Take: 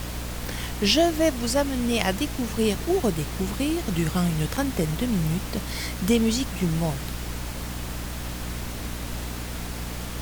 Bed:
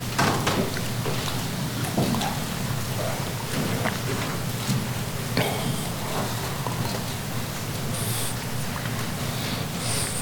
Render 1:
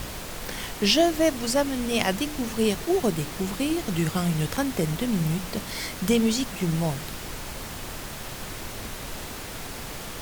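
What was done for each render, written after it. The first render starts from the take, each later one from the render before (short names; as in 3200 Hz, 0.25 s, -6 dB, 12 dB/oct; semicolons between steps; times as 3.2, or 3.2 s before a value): de-hum 60 Hz, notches 5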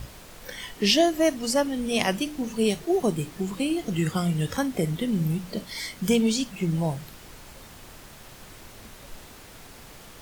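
noise print and reduce 10 dB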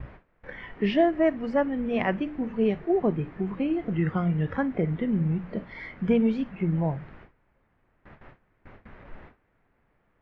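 gate with hold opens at -33 dBFS; Chebyshev low-pass 2000 Hz, order 3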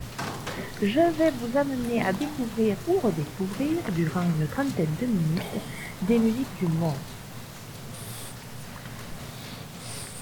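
add bed -11 dB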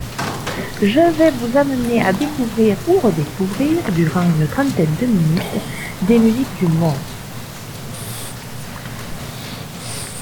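gain +10 dB; limiter -3 dBFS, peak gain reduction 2.5 dB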